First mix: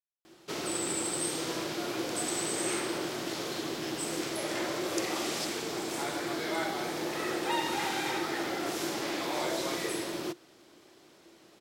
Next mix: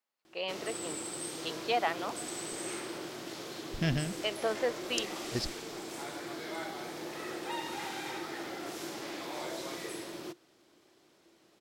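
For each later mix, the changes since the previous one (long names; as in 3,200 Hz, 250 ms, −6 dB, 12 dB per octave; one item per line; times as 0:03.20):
first voice: unmuted
second voice: remove first-order pre-emphasis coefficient 0.97
background −7.0 dB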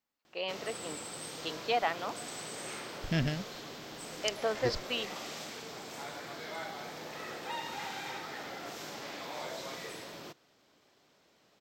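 second voice: entry −0.70 s
background: add parametric band 340 Hz −14 dB 0.27 octaves
master: add parametric band 10,000 Hz −14.5 dB 0.33 octaves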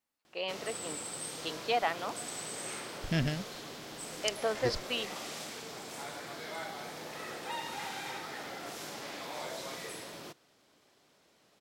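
master: add parametric band 10,000 Hz +14.5 dB 0.33 octaves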